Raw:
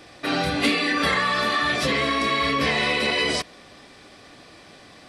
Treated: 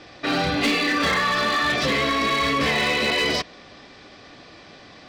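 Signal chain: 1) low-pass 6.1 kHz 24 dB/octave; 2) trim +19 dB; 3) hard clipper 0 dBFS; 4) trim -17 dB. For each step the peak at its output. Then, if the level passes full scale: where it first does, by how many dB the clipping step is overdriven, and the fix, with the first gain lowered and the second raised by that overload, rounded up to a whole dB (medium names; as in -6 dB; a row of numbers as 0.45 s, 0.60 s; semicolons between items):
-12.0 dBFS, +7.0 dBFS, 0.0 dBFS, -17.0 dBFS; step 2, 7.0 dB; step 2 +12 dB, step 4 -10 dB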